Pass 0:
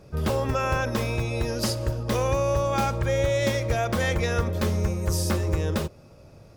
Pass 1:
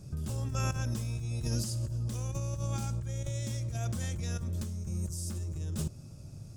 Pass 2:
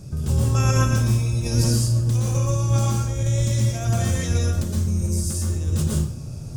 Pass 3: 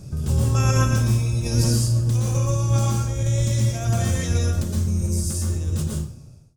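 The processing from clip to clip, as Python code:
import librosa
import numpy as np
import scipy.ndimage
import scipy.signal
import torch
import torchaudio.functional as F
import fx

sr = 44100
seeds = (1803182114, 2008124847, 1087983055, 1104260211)

y1 = fx.graphic_eq_10(x, sr, hz=(125, 500, 1000, 2000, 4000, 8000, 16000), db=(6, -12, -8, -10, -4, 10, -3))
y1 = fx.over_compress(y1, sr, threshold_db=-30.0, ratio=-1.0)
y1 = y1 * librosa.db_to_amplitude(-4.0)
y2 = fx.rev_plate(y1, sr, seeds[0], rt60_s=0.53, hf_ratio=0.85, predelay_ms=105, drr_db=-3.0)
y2 = y2 * librosa.db_to_amplitude(8.5)
y3 = fx.fade_out_tail(y2, sr, length_s=1.01)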